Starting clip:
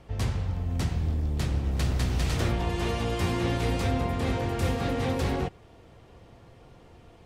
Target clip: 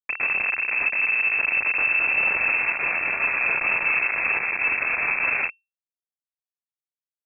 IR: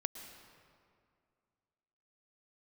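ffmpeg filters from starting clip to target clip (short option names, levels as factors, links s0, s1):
-filter_complex "[0:a]asplit=2[s0][s1];[s1]asoftclip=type=tanh:threshold=0.0335,volume=0.668[s2];[s0][s2]amix=inputs=2:normalize=0,acrusher=bits=3:mix=0:aa=0.000001,asetrate=32097,aresample=44100,atempo=1.37395,lowpass=f=2300:t=q:w=0.5098,lowpass=f=2300:t=q:w=0.6013,lowpass=f=2300:t=q:w=0.9,lowpass=f=2300:t=q:w=2.563,afreqshift=-2700"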